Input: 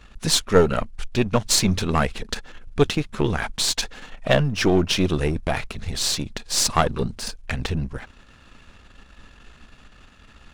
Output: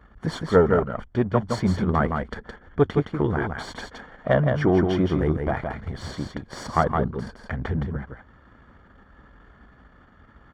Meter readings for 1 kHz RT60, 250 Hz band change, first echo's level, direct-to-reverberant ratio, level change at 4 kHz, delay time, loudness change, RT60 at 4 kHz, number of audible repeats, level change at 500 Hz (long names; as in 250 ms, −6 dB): no reverb audible, 0.0 dB, −5.0 dB, no reverb audible, −16.5 dB, 166 ms, −1.5 dB, no reverb audible, 1, 0.0 dB